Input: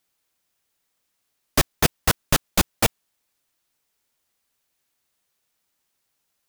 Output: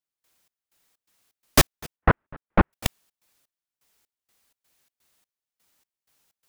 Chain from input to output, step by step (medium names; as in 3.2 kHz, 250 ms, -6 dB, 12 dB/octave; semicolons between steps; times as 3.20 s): 1.96–2.73 s: low-pass 1.8 kHz 24 dB/octave; in parallel at -0.5 dB: peak limiter -13 dBFS, peak gain reduction 8.5 dB; on the sum: trance gate "..xx..xx.xx.xx." 126 bpm -24 dB